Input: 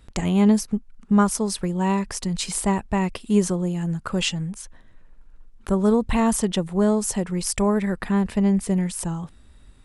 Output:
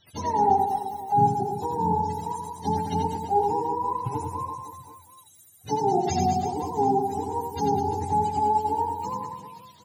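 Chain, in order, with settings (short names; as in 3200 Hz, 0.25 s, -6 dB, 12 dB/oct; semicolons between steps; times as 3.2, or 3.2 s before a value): spectrum mirrored in octaves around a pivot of 410 Hz; reverse bouncing-ball echo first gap 90 ms, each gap 1.25×, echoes 5; gain -3.5 dB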